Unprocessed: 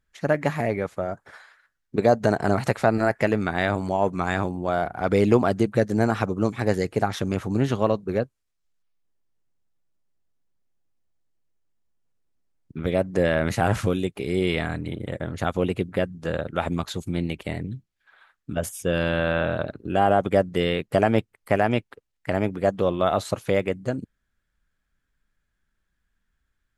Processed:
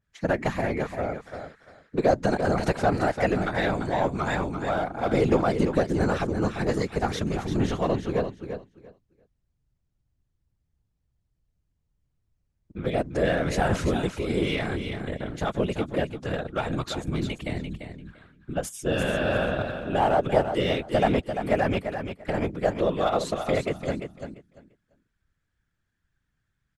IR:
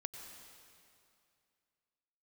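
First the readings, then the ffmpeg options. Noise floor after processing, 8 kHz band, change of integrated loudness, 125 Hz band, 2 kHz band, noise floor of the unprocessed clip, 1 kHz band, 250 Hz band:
-77 dBFS, -0.5 dB, -2.0 dB, -2.5 dB, -2.0 dB, -77 dBFS, -1.5 dB, -2.0 dB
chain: -filter_complex "[0:a]lowpass=8.8k,asplit=2[a][b];[b]volume=15dB,asoftclip=hard,volume=-15dB,volume=-5dB[c];[a][c]amix=inputs=2:normalize=0,afftfilt=real='hypot(re,im)*cos(2*PI*random(0))':imag='hypot(re,im)*sin(2*PI*random(1))':win_size=512:overlap=0.75,aecho=1:1:343|686|1029:0.398|0.0717|0.0129,adynamicequalizer=threshold=0.00891:dfrequency=2900:dqfactor=0.7:tfrequency=2900:tqfactor=0.7:attack=5:release=100:ratio=0.375:range=1.5:mode=boostabove:tftype=highshelf"

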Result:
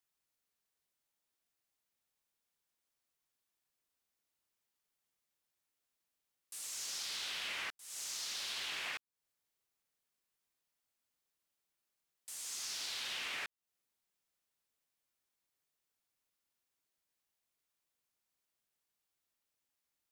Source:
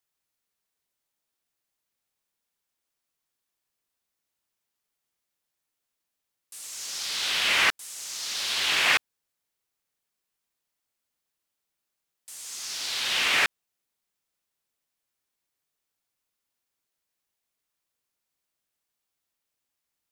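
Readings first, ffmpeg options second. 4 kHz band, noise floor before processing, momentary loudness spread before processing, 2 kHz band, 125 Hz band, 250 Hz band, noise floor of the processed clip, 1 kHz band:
-14.5 dB, -84 dBFS, 16 LU, -17.5 dB, under -15 dB, -17.0 dB, under -85 dBFS, -17.5 dB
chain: -af "acompressor=threshold=-34dB:ratio=16,volume=-4dB"

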